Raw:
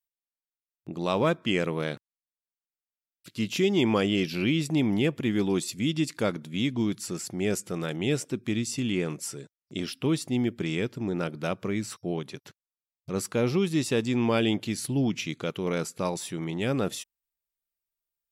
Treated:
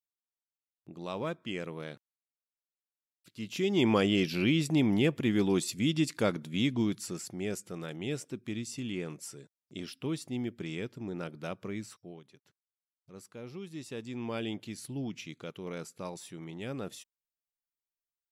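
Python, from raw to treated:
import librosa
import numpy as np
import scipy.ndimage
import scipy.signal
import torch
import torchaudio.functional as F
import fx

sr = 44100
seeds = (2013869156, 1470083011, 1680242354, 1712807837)

y = fx.gain(x, sr, db=fx.line((3.4, -11.0), (3.86, -1.5), (6.73, -1.5), (7.58, -8.5), (11.8, -8.5), (12.22, -19.5), (13.4, -19.5), (14.4, -11.0)))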